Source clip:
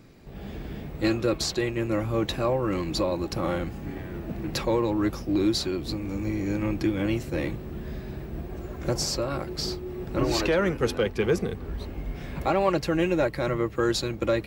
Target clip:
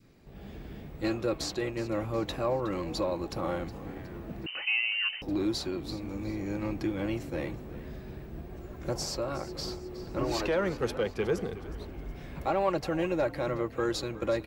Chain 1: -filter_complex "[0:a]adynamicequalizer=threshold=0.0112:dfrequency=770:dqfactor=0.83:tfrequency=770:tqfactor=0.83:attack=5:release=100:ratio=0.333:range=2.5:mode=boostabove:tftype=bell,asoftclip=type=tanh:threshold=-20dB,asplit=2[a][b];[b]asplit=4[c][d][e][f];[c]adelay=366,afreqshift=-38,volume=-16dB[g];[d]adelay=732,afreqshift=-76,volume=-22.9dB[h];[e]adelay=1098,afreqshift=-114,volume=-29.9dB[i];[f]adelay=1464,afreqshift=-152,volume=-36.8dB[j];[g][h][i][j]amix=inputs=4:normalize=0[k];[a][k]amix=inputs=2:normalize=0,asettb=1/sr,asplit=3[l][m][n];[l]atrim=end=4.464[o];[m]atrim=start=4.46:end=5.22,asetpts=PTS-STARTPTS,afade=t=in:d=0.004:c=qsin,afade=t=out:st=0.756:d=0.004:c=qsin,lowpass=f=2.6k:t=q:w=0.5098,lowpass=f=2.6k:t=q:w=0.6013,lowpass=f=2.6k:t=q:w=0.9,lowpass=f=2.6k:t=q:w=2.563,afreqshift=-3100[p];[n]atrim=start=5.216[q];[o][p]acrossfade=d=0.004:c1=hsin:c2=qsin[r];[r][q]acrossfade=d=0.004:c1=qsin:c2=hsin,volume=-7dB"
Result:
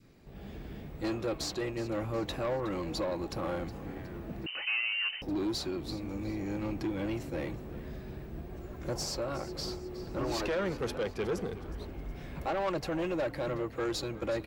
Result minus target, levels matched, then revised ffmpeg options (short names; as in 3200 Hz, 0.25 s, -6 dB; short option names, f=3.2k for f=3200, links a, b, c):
soft clip: distortion +16 dB
-filter_complex "[0:a]adynamicequalizer=threshold=0.0112:dfrequency=770:dqfactor=0.83:tfrequency=770:tqfactor=0.83:attack=5:release=100:ratio=0.333:range=2.5:mode=boostabove:tftype=bell,asoftclip=type=tanh:threshold=-8.5dB,asplit=2[a][b];[b]asplit=4[c][d][e][f];[c]adelay=366,afreqshift=-38,volume=-16dB[g];[d]adelay=732,afreqshift=-76,volume=-22.9dB[h];[e]adelay=1098,afreqshift=-114,volume=-29.9dB[i];[f]adelay=1464,afreqshift=-152,volume=-36.8dB[j];[g][h][i][j]amix=inputs=4:normalize=0[k];[a][k]amix=inputs=2:normalize=0,asettb=1/sr,asplit=3[l][m][n];[l]atrim=end=4.464[o];[m]atrim=start=4.46:end=5.22,asetpts=PTS-STARTPTS,afade=t=in:d=0.004:c=qsin,afade=t=out:st=0.756:d=0.004:c=qsin,lowpass=f=2.6k:t=q:w=0.5098,lowpass=f=2.6k:t=q:w=0.6013,lowpass=f=2.6k:t=q:w=0.9,lowpass=f=2.6k:t=q:w=2.563,afreqshift=-3100[p];[n]atrim=start=5.216[q];[o][p]acrossfade=d=0.004:c1=hsin:c2=qsin[r];[r][q]acrossfade=d=0.004:c1=qsin:c2=hsin,volume=-7dB"